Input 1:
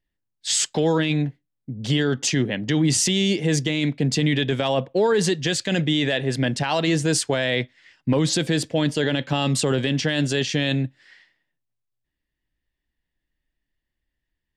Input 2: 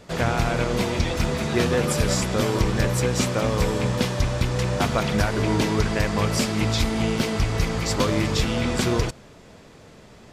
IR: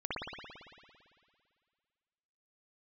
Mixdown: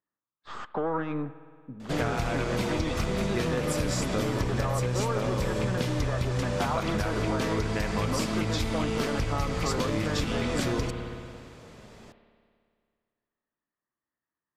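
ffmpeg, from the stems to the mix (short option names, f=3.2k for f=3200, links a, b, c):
-filter_complex "[0:a]highpass=190,aeval=exprs='(tanh(7.94*val(0)+0.45)-tanh(0.45))/7.94':c=same,lowpass=f=1.2k:t=q:w=5.2,volume=-5dB,asplit=2[a][b];[b]volume=-21dB[c];[1:a]adelay=1800,volume=-3.5dB,asplit=2[d][e];[e]volume=-13dB[f];[2:a]atrim=start_sample=2205[g];[c][f]amix=inputs=2:normalize=0[h];[h][g]afir=irnorm=-1:irlink=0[i];[a][d][i]amix=inputs=3:normalize=0,acompressor=threshold=-24dB:ratio=6"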